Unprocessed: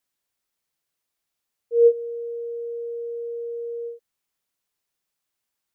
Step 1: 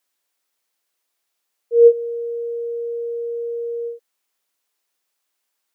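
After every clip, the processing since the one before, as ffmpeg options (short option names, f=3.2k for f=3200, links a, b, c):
-af "highpass=330,volume=6dB"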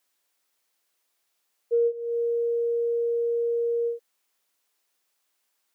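-af "acompressor=threshold=-22dB:ratio=12,volume=1dB"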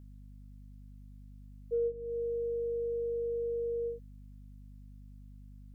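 -af "aeval=exprs='val(0)+0.00891*(sin(2*PI*50*n/s)+sin(2*PI*2*50*n/s)/2+sin(2*PI*3*50*n/s)/3+sin(2*PI*4*50*n/s)/4+sin(2*PI*5*50*n/s)/5)':c=same,volume=-8.5dB"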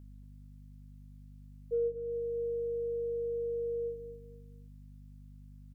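-af "aecho=1:1:233|466|699:0.299|0.0836|0.0234"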